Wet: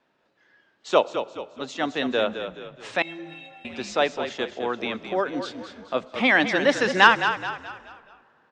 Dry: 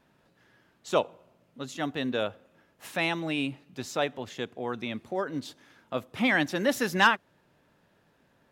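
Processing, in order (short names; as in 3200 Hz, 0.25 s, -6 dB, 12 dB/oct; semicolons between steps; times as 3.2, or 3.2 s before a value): steep low-pass 9100 Hz 72 dB/oct; three-band isolator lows -14 dB, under 260 Hz, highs -19 dB, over 6400 Hz; frequency-shifting echo 0.213 s, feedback 42%, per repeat -35 Hz, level -9 dB; spectral noise reduction 8 dB; 3.02–3.65 metallic resonator 160 Hz, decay 0.81 s, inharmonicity 0.03; on a send at -23 dB: reverb RT60 2.9 s, pre-delay 60 ms; on the sum: gain +6.5 dB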